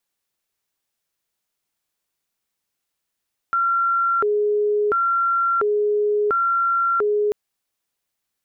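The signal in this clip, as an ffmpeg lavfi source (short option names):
-f lavfi -i "aevalsrc='0.15*sin(2*PI*(893.5*t+476.5/0.72*(0.5-abs(mod(0.72*t,1)-0.5))))':d=3.79:s=44100"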